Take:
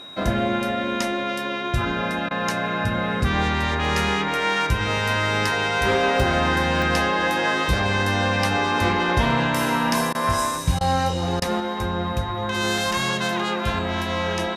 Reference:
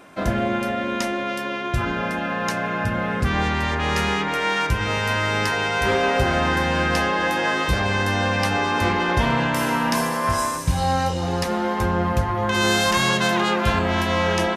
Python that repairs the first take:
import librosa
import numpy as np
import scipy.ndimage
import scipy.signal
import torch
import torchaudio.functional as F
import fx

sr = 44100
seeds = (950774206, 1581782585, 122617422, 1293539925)

y = fx.notch(x, sr, hz=3800.0, q=30.0)
y = fx.fix_interpolate(y, sr, at_s=(3.85, 6.2, 6.82, 12.78), length_ms=1.3)
y = fx.fix_interpolate(y, sr, at_s=(2.29, 10.13, 10.79, 11.4), length_ms=17.0)
y = fx.gain(y, sr, db=fx.steps((0.0, 0.0), (11.6, 4.0)))